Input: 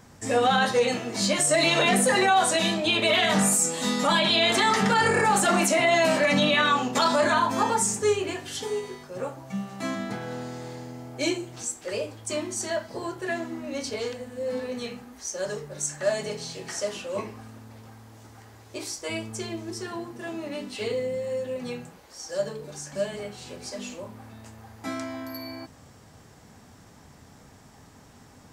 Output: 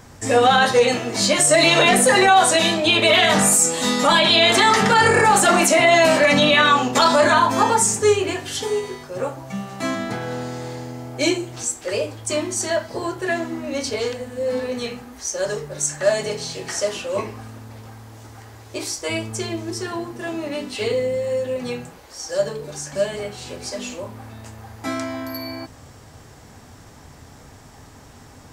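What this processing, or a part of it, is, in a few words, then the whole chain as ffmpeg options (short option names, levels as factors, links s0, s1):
low shelf boost with a cut just above: -af "lowshelf=f=82:g=5,equalizer=f=190:t=o:w=0.52:g=-6,volume=2.24"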